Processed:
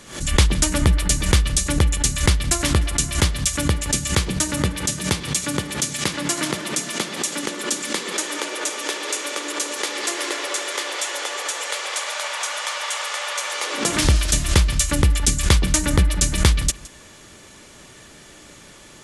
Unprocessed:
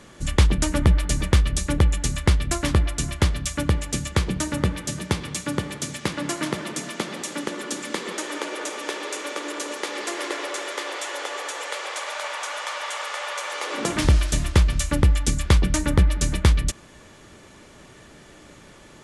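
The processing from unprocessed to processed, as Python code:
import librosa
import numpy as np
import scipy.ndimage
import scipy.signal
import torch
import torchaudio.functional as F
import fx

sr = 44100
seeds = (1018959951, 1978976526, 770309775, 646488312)

y = fx.high_shelf(x, sr, hz=2700.0, db=9.5)
y = y + 10.0 ** (-20.0 / 20.0) * np.pad(y, (int(166 * sr / 1000.0), 0))[:len(y)]
y = fx.pre_swell(y, sr, db_per_s=120.0)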